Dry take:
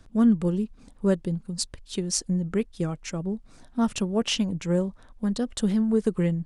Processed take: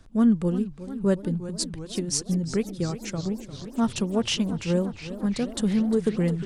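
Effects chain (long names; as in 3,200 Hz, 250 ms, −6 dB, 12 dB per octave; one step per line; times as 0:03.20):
feedback echo with a swinging delay time 356 ms, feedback 77%, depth 172 cents, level −14 dB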